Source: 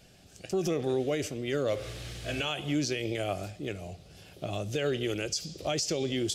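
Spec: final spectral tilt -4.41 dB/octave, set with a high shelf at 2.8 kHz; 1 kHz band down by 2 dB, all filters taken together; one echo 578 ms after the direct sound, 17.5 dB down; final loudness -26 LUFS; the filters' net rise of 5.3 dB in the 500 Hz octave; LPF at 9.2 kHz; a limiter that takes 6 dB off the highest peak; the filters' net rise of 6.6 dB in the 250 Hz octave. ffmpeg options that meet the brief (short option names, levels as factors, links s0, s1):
-af "lowpass=9200,equalizer=f=250:t=o:g=7,equalizer=f=500:t=o:g=6,equalizer=f=1000:t=o:g=-9,highshelf=f=2800:g=6,alimiter=limit=0.106:level=0:latency=1,aecho=1:1:578:0.133,volume=1.58"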